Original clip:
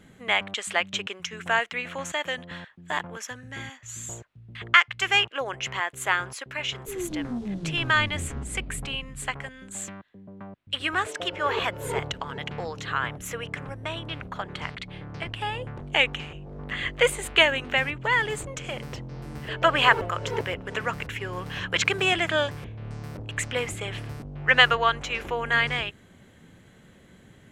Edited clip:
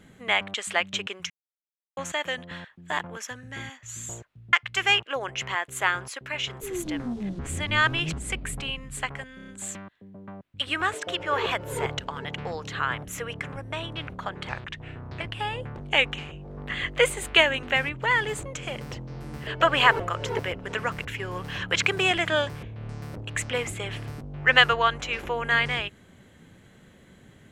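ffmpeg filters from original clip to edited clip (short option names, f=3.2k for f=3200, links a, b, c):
-filter_complex "[0:a]asplit=12[a][b][c][d][e][f][g][h][i][j][k][l];[a]atrim=end=1.3,asetpts=PTS-STARTPTS,afade=t=out:st=1.296:d=0.004:c=hsin[m];[b]atrim=start=1.3:end=1.97,asetpts=PTS-STARTPTS,volume=0[n];[c]atrim=start=1.97:end=4.532,asetpts=PTS-STARTPTS,afade=t=in:d=0.004:c=hsin[o];[d]atrim=start=4.778:end=7.642[p];[e]atrim=start=7.638:end=8.382,asetpts=PTS-STARTPTS,areverse[q];[f]atrim=start=8.378:end=9.642[r];[g]atrim=start=9.608:end=9.642[s];[h]atrim=start=9.608:end=9.642[t];[i]atrim=start=9.608:end=9.642[u];[j]atrim=start=9.608:end=14.624[v];[k]atrim=start=14.62:end=15.22,asetpts=PTS-STARTPTS,asetrate=37044,aresample=44100[w];[l]atrim=start=15.216[x];[m][n][o]concat=n=3:v=0:a=1[y];[y][p]acrossfade=d=0.004:c1=hsin:c2=hsin[z];[z][q]acrossfade=d=0.004:c1=hsin:c2=hsin[aa];[aa][r]acrossfade=d=0.004:c1=hsin:c2=hsin[ab];[ab][s]acrossfade=d=0.004:c1=hsin:c2=hsin[ac];[ac][t]acrossfade=d=0.004:c1=hsin:c2=hsin[ad];[ad][u]acrossfade=d=0.004:c1=hsin:c2=hsin[ae];[ae][v]acrossfade=d=0.004:c1=hsin:c2=hsin[af];[af][w]acrossfade=d=0.004:c1=hsin:c2=hsin[ag];[ag][x]acrossfade=d=0.004:c1=hsin:c2=hsin"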